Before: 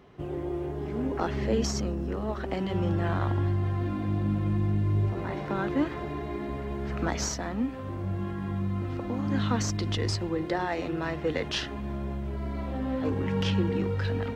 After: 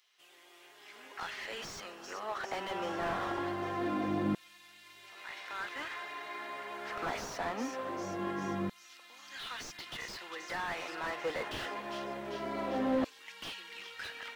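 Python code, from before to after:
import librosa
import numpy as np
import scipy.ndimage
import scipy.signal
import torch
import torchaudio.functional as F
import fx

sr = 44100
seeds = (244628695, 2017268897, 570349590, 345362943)

y = fx.echo_thinned(x, sr, ms=396, feedback_pct=63, hz=420.0, wet_db=-20.0)
y = fx.filter_lfo_highpass(y, sr, shape='saw_down', hz=0.23, low_hz=290.0, high_hz=4300.0, q=0.76)
y = fx.slew_limit(y, sr, full_power_hz=17.0)
y = y * 10.0 ** (4.0 / 20.0)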